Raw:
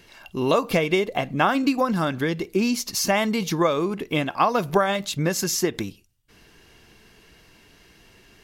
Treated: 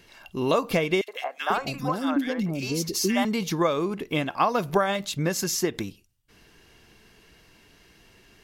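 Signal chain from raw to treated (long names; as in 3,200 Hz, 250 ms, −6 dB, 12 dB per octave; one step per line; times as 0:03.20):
0:01.01–0:03.25: three-band delay without the direct sound highs, mids, lows 70/490 ms, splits 530/1,800 Hz
level −2.5 dB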